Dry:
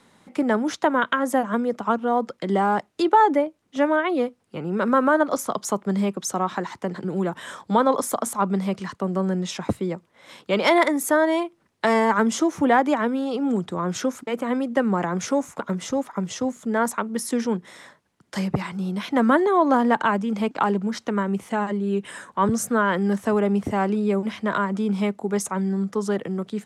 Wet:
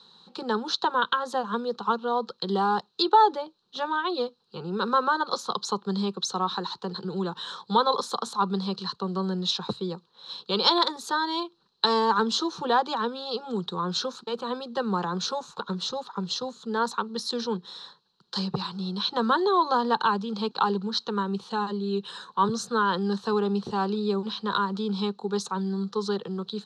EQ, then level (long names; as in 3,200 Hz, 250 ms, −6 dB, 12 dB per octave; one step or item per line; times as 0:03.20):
low-pass with resonance 4,100 Hz, resonance Q 12
low-shelf EQ 450 Hz −5.5 dB
phaser with its sweep stopped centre 420 Hz, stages 8
0.0 dB